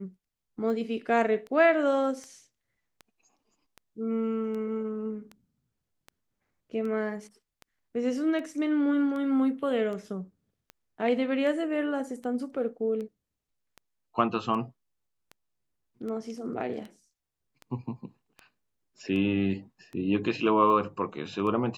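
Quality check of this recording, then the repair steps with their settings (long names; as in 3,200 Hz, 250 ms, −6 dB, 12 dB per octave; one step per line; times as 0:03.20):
scratch tick 78 rpm −28 dBFS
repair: click removal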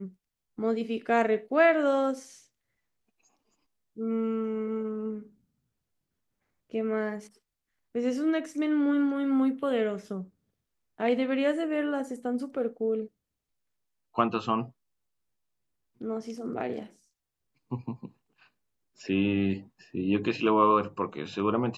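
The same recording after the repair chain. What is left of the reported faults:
none of them is left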